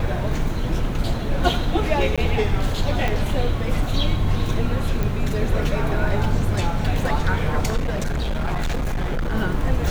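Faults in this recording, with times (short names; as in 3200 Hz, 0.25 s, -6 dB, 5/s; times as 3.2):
2.16–2.18 gap 16 ms
3.08 pop -10 dBFS
5.03 pop
7.76–9.35 clipped -19.5 dBFS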